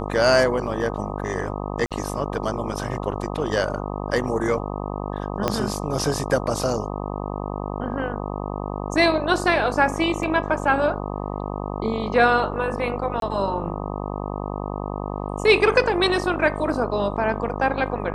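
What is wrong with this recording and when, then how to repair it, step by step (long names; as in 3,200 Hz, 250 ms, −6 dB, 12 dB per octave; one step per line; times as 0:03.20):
mains buzz 50 Hz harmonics 25 −29 dBFS
0:01.86–0:01.91: drop-out 47 ms
0:05.48: click −7 dBFS
0:10.23: drop-out 2.1 ms
0:13.20–0:13.22: drop-out 22 ms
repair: click removal
hum removal 50 Hz, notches 25
repair the gap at 0:01.86, 47 ms
repair the gap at 0:10.23, 2.1 ms
repair the gap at 0:13.20, 22 ms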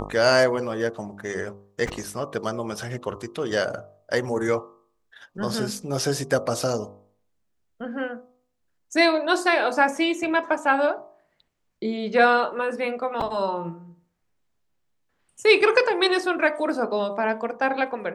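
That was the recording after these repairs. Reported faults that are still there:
0:05.48: click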